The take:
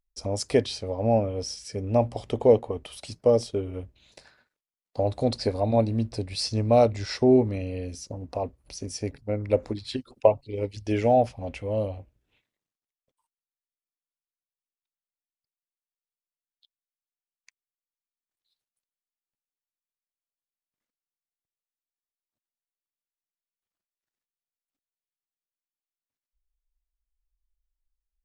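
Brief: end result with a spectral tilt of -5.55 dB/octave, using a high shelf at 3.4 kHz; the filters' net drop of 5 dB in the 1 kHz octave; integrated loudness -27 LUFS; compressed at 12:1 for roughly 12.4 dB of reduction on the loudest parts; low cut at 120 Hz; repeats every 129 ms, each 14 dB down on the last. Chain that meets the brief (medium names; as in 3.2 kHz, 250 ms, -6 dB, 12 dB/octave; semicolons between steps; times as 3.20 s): high-pass 120 Hz; peaking EQ 1 kHz -8 dB; treble shelf 3.4 kHz -3.5 dB; compression 12:1, threshold -26 dBFS; feedback delay 129 ms, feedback 20%, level -14 dB; trim +7 dB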